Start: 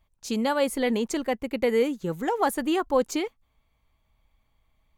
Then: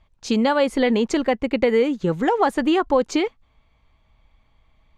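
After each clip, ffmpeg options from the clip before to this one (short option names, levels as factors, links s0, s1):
-af "lowpass=4800,acompressor=threshold=0.0562:ratio=2.5,volume=2.82"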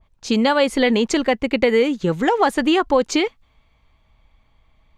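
-af "adynamicequalizer=threshold=0.0178:dfrequency=1700:dqfactor=0.7:tfrequency=1700:tqfactor=0.7:attack=5:release=100:ratio=0.375:range=2.5:mode=boostabove:tftype=highshelf,volume=1.19"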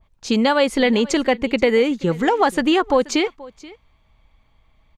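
-af "aecho=1:1:480:0.0891"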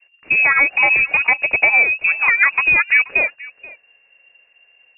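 -af "lowpass=f=2400:t=q:w=0.5098,lowpass=f=2400:t=q:w=0.6013,lowpass=f=2400:t=q:w=0.9,lowpass=f=2400:t=q:w=2.563,afreqshift=-2800,volume=1.33"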